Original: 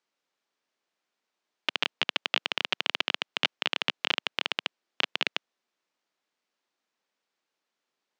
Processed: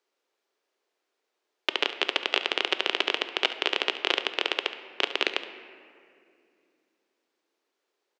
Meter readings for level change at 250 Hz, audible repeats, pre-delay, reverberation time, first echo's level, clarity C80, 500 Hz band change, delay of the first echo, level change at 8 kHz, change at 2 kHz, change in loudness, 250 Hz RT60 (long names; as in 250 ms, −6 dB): +5.0 dB, 1, 3 ms, 2.4 s, −14.5 dB, 12.5 dB, +8.5 dB, 70 ms, +2.0 dB, +2.0 dB, +2.5 dB, 3.6 s